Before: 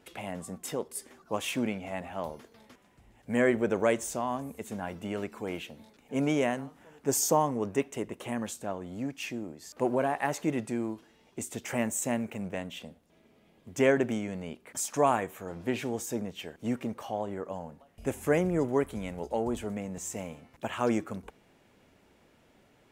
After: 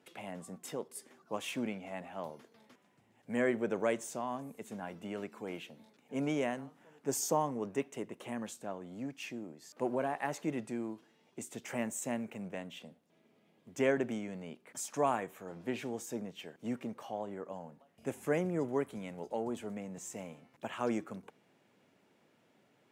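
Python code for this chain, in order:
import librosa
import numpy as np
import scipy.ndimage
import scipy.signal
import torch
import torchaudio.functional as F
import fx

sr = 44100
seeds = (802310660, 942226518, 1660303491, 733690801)

y = scipy.signal.sosfilt(scipy.signal.butter(4, 120.0, 'highpass', fs=sr, output='sos'), x)
y = fx.high_shelf(y, sr, hz=9000.0, db=-4.0)
y = F.gain(torch.from_numpy(y), -6.0).numpy()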